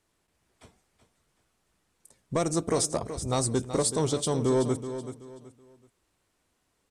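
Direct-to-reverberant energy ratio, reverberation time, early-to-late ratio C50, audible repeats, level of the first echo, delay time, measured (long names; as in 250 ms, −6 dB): no reverb audible, no reverb audible, no reverb audible, 3, −11.0 dB, 378 ms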